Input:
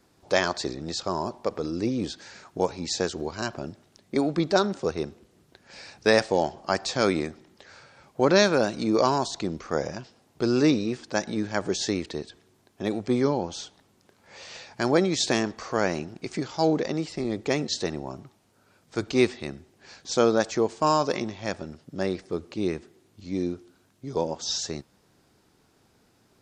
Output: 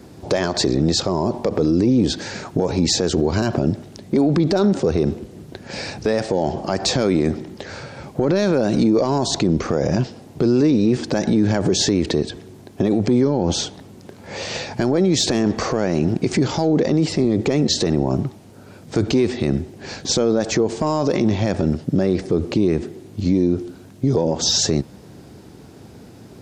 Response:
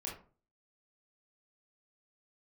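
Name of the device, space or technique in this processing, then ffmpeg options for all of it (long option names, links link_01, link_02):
mastering chain: -af "highpass=57,equalizer=frequency=1200:width_type=o:width=0.77:gain=-3.5,acompressor=threshold=-26dB:ratio=3,asoftclip=type=tanh:threshold=-15dB,tiltshelf=frequency=660:gain=5.5,alimiter=level_in=27dB:limit=-1dB:release=50:level=0:latency=1,volume=-8dB"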